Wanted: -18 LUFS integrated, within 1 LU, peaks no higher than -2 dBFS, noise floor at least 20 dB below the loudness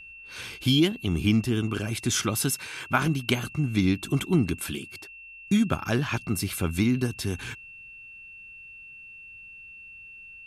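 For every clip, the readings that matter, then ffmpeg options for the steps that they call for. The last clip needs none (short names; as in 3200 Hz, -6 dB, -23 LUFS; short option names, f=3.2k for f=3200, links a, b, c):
steady tone 2700 Hz; tone level -43 dBFS; loudness -26.0 LUFS; peak -7.5 dBFS; loudness target -18.0 LUFS
-> -af "bandreject=f=2.7k:w=30"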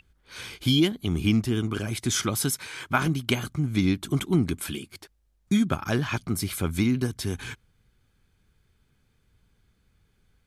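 steady tone none; loudness -26.5 LUFS; peak -7.5 dBFS; loudness target -18.0 LUFS
-> -af "volume=8.5dB,alimiter=limit=-2dB:level=0:latency=1"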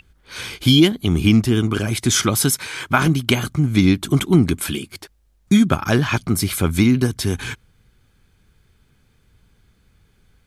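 loudness -18.0 LUFS; peak -2.0 dBFS; noise floor -60 dBFS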